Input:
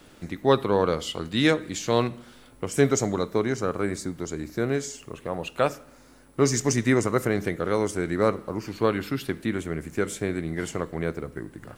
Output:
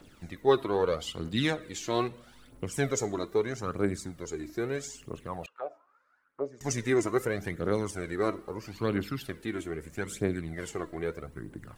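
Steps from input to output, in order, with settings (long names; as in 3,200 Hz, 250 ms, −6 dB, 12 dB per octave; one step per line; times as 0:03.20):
phase shifter 0.78 Hz, delay 3.2 ms, feedback 56%
0:05.46–0:06.61: envelope filter 570–1,500 Hz, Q 4.7, down, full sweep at −17.5 dBFS
level −7 dB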